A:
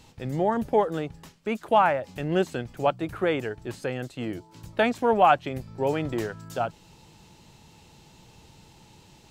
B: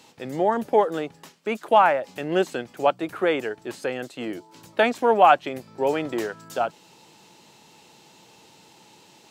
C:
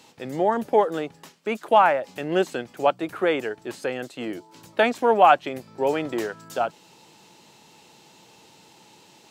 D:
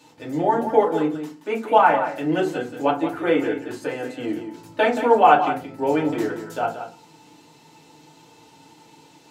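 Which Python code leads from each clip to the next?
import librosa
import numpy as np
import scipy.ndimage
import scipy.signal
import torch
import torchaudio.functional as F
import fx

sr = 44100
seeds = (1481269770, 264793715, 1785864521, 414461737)

y1 = scipy.signal.sosfilt(scipy.signal.butter(2, 270.0, 'highpass', fs=sr, output='sos'), x)
y1 = y1 * librosa.db_to_amplitude(3.5)
y2 = y1
y3 = y2 + 10.0 ** (-10.0 / 20.0) * np.pad(y2, (int(177 * sr / 1000.0), 0))[:len(y2)]
y3 = fx.rev_fdn(y3, sr, rt60_s=0.33, lf_ratio=1.55, hf_ratio=0.55, size_ms=20.0, drr_db=-4.0)
y3 = y3 * librosa.db_to_amplitude(-5.0)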